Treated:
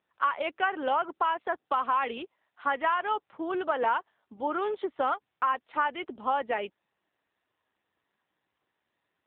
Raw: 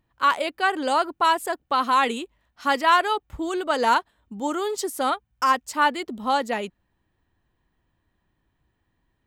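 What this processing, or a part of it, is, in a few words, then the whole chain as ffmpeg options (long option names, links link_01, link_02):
voicemail: -af "highpass=400,lowpass=3100,acompressor=threshold=-22dB:ratio=10" -ar 8000 -c:a libopencore_amrnb -b:a 7400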